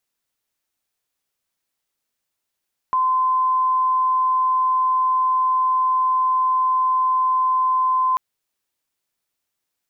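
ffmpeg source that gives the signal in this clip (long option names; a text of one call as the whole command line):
ffmpeg -f lavfi -i "sine=frequency=1030:duration=5.24:sample_rate=44100,volume=2.56dB" out.wav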